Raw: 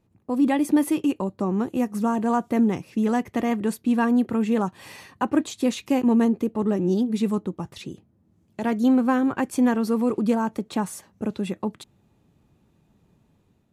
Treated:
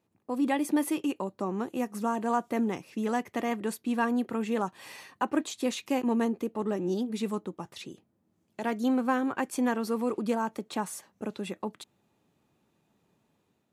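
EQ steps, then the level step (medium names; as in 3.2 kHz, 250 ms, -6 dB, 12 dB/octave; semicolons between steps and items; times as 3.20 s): high-pass 420 Hz 6 dB/octave; -2.5 dB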